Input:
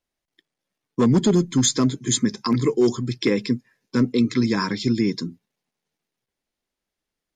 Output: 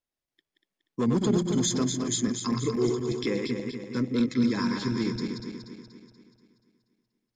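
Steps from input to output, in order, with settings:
feedback delay that plays each chunk backwards 120 ms, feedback 71%, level −4.5 dB
level −8.5 dB

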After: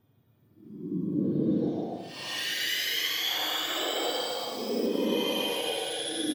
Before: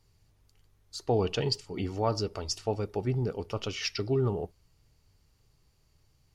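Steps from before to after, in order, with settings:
frequency axis turned over on the octave scale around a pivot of 1,200 Hz
in parallel at −0.5 dB: brickwall limiter −27 dBFS, peak gain reduction 10.5 dB
on the sum: extreme stretch with random phases 9.6×, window 0.10 s, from 0:00.83
on a send: single-tap delay 279 ms −6.5 dB
on the sum: delay with pitch and tempo change per echo 630 ms, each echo +7 semitones, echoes 3, each echo −6 dB
high-shelf EQ 5,000 Hz −10.5 dB

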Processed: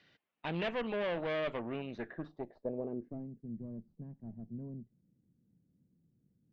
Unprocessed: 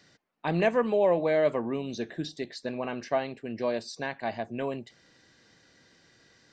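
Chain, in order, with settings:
tube saturation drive 27 dB, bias 0.65
low-pass filter sweep 3,000 Hz → 190 Hz, 0:01.71–0:03.33
level −5 dB

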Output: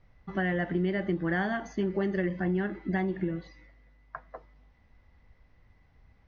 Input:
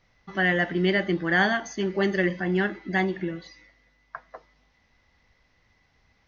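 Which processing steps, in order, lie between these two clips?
low-pass filter 1,300 Hz 6 dB per octave
low-shelf EQ 120 Hz +10.5 dB
downward compressor 6 to 1, threshold −25 dBFS, peak gain reduction 8.5 dB

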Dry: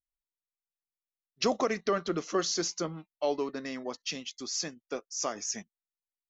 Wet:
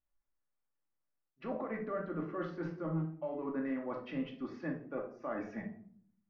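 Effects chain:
low-pass filter 1,800 Hz 24 dB per octave
brickwall limiter −23.5 dBFS, peak gain reduction 7.5 dB
reversed playback
downward compressor, threshold −43 dBFS, peak gain reduction 14.5 dB
reversed playback
rectangular room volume 690 cubic metres, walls furnished, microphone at 2.4 metres
level +4 dB

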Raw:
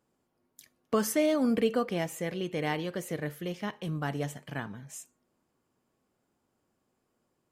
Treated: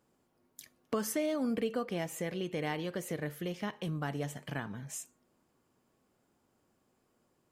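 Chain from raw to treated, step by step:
downward compressor 2 to 1, threshold −40 dBFS, peak gain reduction 10.5 dB
level +3 dB

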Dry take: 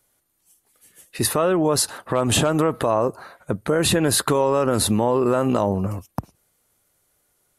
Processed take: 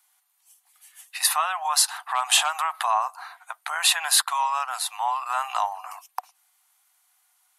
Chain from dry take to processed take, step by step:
0:04.21–0:05.30: noise gate −18 dBFS, range −8 dB
Chebyshev high-pass with heavy ripple 720 Hz, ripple 3 dB
level +4 dB

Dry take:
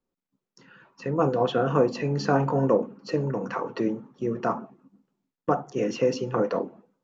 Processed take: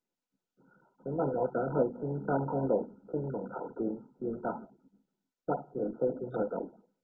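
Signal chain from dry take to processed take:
running median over 15 samples
high-pass filter 130 Hz 24 dB per octave
level −7.5 dB
MP2 8 kbit/s 16,000 Hz

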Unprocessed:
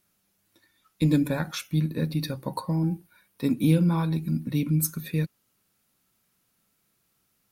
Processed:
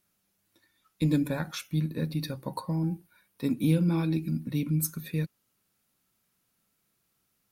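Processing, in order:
0:03.88–0:04.30: thirty-one-band graphic EQ 315 Hz +10 dB, 1,000 Hz −8 dB, 2,500 Hz +8 dB, 5,000 Hz +6 dB
level −3.5 dB

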